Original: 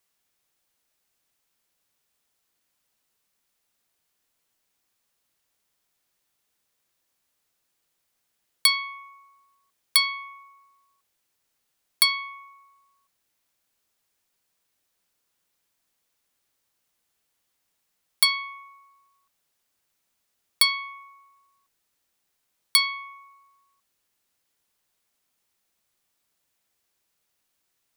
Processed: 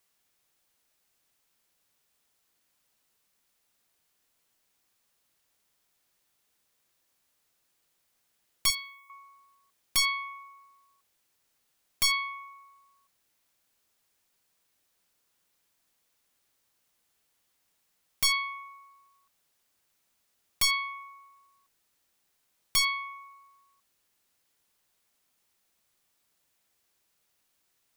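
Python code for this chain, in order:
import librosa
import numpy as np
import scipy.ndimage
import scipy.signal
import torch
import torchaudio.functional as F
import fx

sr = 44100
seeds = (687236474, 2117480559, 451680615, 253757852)

y = 10.0 ** (-19.5 / 20.0) * (np.abs((x / 10.0 ** (-19.5 / 20.0) + 3.0) % 4.0 - 2.0) - 1.0)
y = fx.differentiator(y, sr, at=(8.7, 9.1))
y = y * librosa.db_to_amplitude(1.5)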